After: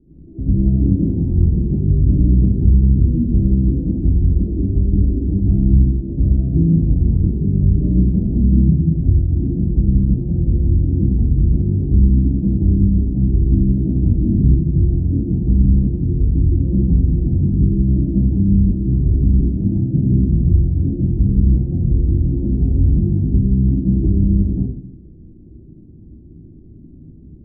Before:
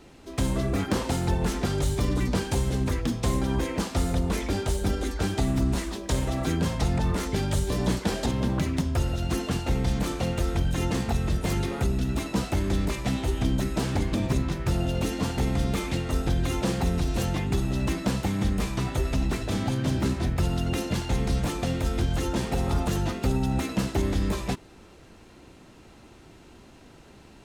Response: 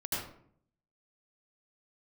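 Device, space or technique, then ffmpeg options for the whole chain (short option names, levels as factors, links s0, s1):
next room: -filter_complex "[0:a]lowpass=f=300:w=0.5412,lowpass=f=300:w=1.3066[s0];[1:a]atrim=start_sample=2205[s1];[s0][s1]afir=irnorm=-1:irlink=0,volume=1.68"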